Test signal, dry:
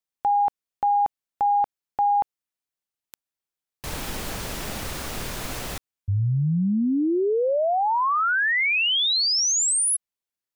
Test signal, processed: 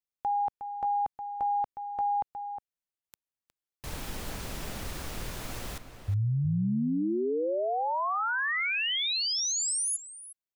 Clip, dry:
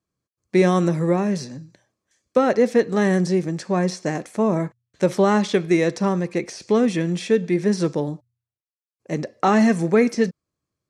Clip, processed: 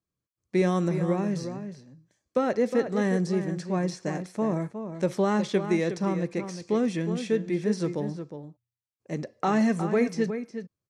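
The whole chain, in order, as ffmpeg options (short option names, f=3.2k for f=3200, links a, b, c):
-filter_complex "[0:a]lowshelf=f=160:g=4.5,asplit=2[a][b];[b]adelay=361.5,volume=-9dB,highshelf=f=4k:g=-8.13[c];[a][c]amix=inputs=2:normalize=0,volume=-8dB"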